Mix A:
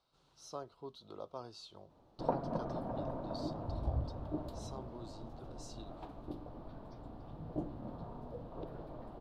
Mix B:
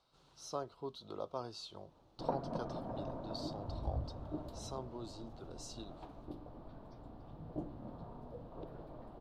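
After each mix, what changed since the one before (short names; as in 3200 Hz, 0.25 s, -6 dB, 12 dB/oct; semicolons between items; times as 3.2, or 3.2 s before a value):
speech +4.0 dB; background -3.0 dB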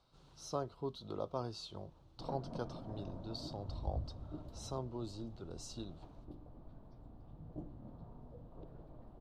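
background -9.5 dB; master: add low shelf 240 Hz +10 dB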